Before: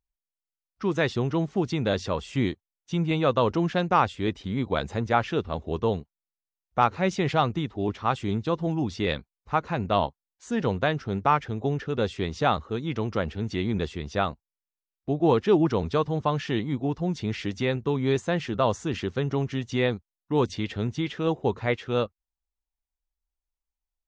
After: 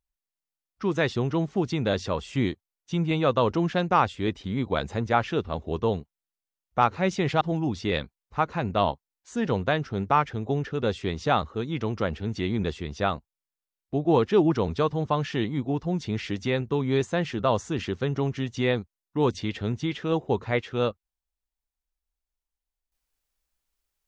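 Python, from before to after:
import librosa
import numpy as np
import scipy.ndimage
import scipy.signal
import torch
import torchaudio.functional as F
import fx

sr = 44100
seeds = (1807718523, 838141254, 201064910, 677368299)

y = fx.edit(x, sr, fx.cut(start_s=7.41, length_s=1.15), tone=tone)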